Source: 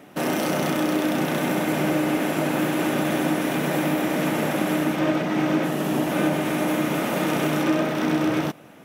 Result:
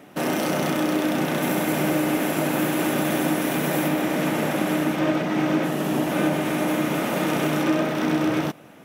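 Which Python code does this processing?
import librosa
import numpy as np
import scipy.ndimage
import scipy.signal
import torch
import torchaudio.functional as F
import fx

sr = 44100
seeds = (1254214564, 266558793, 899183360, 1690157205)

y = fx.high_shelf(x, sr, hz=8900.0, db=7.5, at=(1.42, 3.88))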